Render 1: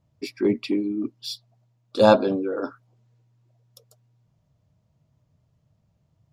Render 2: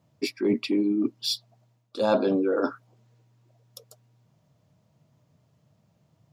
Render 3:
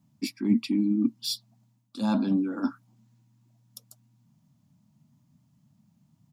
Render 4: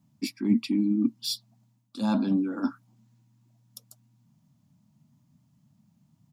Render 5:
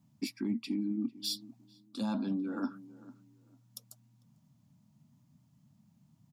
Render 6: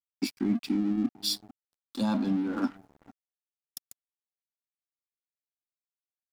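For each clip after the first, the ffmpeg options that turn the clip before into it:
-af "highpass=150,areverse,acompressor=threshold=-27dB:ratio=5,areverse,volume=6dB"
-af "firequalizer=gain_entry='entry(100,0);entry(230,12);entry(430,-18);entry(860,-1);entry(1300,-4);entry(8800,6)':delay=0.05:min_phase=1,volume=-3.5dB"
-af anull
-filter_complex "[0:a]acompressor=threshold=-30dB:ratio=4,asplit=2[a][b];[b]adelay=448,lowpass=f=1.1k:p=1,volume=-17.5dB,asplit=2[c][d];[d]adelay=448,lowpass=f=1.1k:p=1,volume=0.24[e];[a][c][e]amix=inputs=3:normalize=0,volume=-1.5dB"
-af "aeval=exprs='sgn(val(0))*max(abs(val(0))-0.00335,0)':c=same,volume=7dB"

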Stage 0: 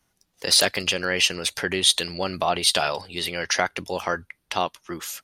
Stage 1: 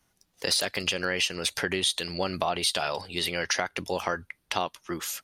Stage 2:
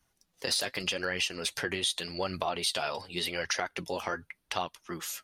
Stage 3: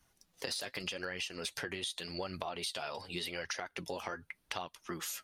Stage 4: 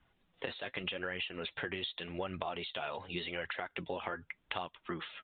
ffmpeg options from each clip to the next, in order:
-af "acompressor=threshold=-23dB:ratio=6"
-af "flanger=delay=0.5:depth=9.1:regen=43:speed=0.86:shape=triangular"
-af "acompressor=threshold=-40dB:ratio=4,volume=2.5dB"
-af "aresample=8000,aresample=44100,volume=1.5dB"

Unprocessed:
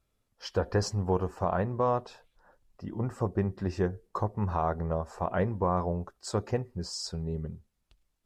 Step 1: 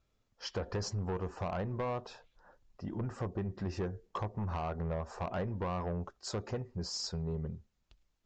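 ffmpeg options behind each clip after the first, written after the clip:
-af "acompressor=threshold=-29dB:ratio=3,aresample=16000,asoftclip=type=tanh:threshold=-29.5dB,aresample=44100"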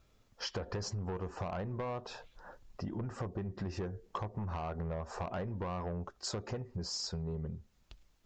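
-af "acompressor=threshold=-47dB:ratio=4,volume=9dB"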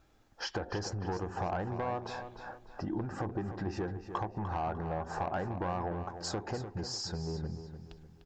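-filter_complex "[0:a]equalizer=f=315:t=o:w=0.33:g=10,equalizer=f=800:t=o:w=0.33:g=11,equalizer=f=1.6k:t=o:w=0.33:g=8,asplit=2[a][b];[b]adelay=299,lowpass=f=4.9k:p=1,volume=-9.5dB,asplit=2[c][d];[d]adelay=299,lowpass=f=4.9k:p=1,volume=0.4,asplit=2[e][f];[f]adelay=299,lowpass=f=4.9k:p=1,volume=0.4,asplit=2[g][h];[h]adelay=299,lowpass=f=4.9k:p=1,volume=0.4[i];[c][e][g][i]amix=inputs=4:normalize=0[j];[a][j]amix=inputs=2:normalize=0"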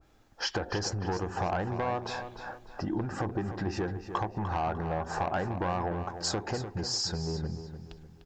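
-af "adynamicequalizer=threshold=0.00398:dfrequency=1600:dqfactor=0.7:tfrequency=1600:tqfactor=0.7:attack=5:release=100:ratio=0.375:range=2:mode=boostabove:tftype=highshelf,volume=3.5dB"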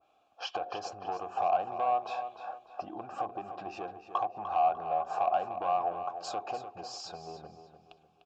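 -filter_complex "[0:a]asplit=3[a][b][c];[a]bandpass=f=730:t=q:w=8,volume=0dB[d];[b]bandpass=f=1.09k:t=q:w=8,volume=-6dB[e];[c]bandpass=f=2.44k:t=q:w=8,volume=-9dB[f];[d][e][f]amix=inputs=3:normalize=0,aexciter=amount=1.7:drive=6.8:freq=2.9k,volume=8dB"

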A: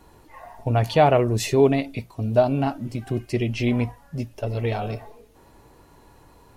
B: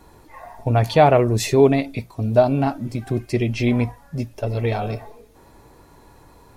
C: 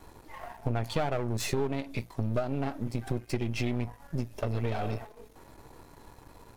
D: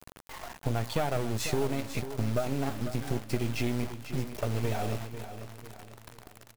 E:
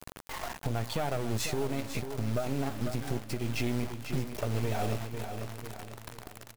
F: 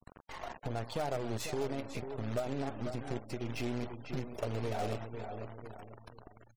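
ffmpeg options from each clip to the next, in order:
-af "bandreject=f=2.9k:w=11,volume=3dB"
-af "aeval=exprs='if(lt(val(0),0),0.251*val(0),val(0))':c=same,acompressor=threshold=-26dB:ratio=6"
-filter_complex "[0:a]acrusher=bits=6:mix=0:aa=0.000001,asplit=2[a][b];[b]aecho=0:1:495|990|1485|1980:0.282|0.116|0.0474|0.0194[c];[a][c]amix=inputs=2:normalize=0"
-af "alimiter=level_in=0.5dB:limit=-24dB:level=0:latency=1:release=429,volume=-0.5dB,volume=4.5dB"
-af "adynamicequalizer=threshold=0.00562:dfrequency=540:dqfactor=0.71:tfrequency=540:tqfactor=0.71:attack=5:release=100:ratio=0.375:range=3:mode=boostabove:tftype=bell,acrusher=bits=3:mode=log:mix=0:aa=0.000001,afftfilt=real='re*gte(hypot(re,im),0.00708)':imag='im*gte(hypot(re,im),0.00708)':win_size=1024:overlap=0.75,volume=-7.5dB"

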